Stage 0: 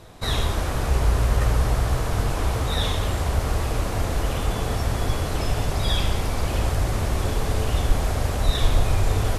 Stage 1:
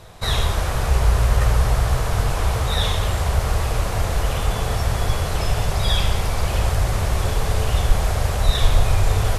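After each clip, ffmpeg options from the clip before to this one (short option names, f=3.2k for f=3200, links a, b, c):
-af "equalizer=f=280:w=1.9:g=-10,volume=3.5dB"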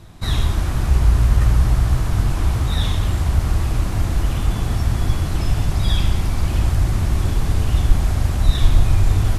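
-af "lowshelf=f=380:t=q:w=3:g=6.5,volume=-4dB"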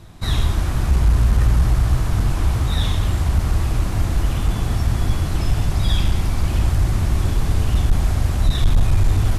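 -af "asoftclip=type=hard:threshold=-9dB"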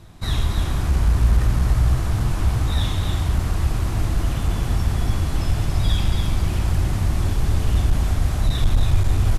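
-af "aecho=1:1:280:0.501,volume=-2.5dB"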